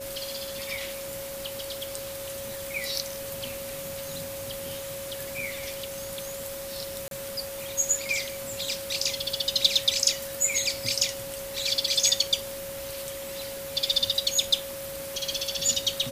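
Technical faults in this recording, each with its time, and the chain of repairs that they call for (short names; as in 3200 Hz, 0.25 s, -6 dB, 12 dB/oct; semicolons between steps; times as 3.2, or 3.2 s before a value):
tone 550 Hz -36 dBFS
7.08–7.11 gap 32 ms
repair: notch 550 Hz, Q 30; interpolate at 7.08, 32 ms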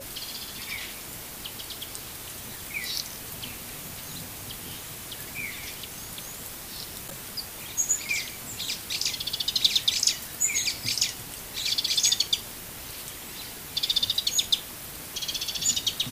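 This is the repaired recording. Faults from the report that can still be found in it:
none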